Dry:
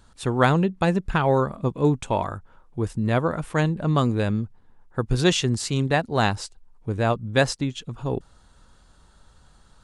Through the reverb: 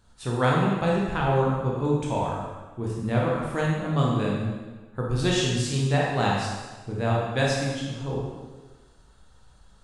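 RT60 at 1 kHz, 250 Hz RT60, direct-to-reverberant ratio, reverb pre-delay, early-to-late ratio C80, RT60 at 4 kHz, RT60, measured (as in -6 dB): 1.2 s, 1.3 s, -4.0 dB, 8 ms, 2.5 dB, 1.2 s, 1.3 s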